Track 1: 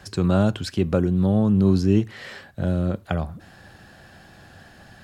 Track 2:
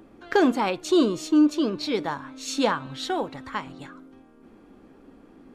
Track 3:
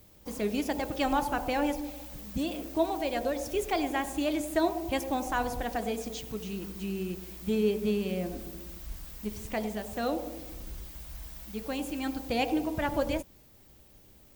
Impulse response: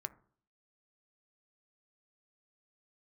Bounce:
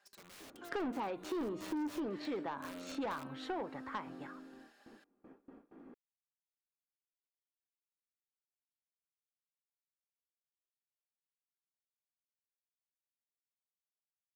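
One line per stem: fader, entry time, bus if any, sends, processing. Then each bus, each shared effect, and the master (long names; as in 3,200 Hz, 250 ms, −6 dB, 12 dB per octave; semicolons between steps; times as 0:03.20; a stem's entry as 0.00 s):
0:00.86 −23.5 dB → 0:01.32 −16.5 dB, 0.00 s, no send, high-pass filter 630 Hz 12 dB per octave; comb filter 5 ms, depth 54%; wrap-around overflow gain 27 dB
−4.5 dB, 0.40 s, no send, three-way crossover with the lows and the highs turned down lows −13 dB, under 180 Hz, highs −17 dB, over 2,300 Hz; noise gate with hold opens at −43 dBFS
muted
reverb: not used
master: soft clipping −27.5 dBFS, distortion −8 dB; downward compressor, threshold −36 dBFS, peak gain reduction 7 dB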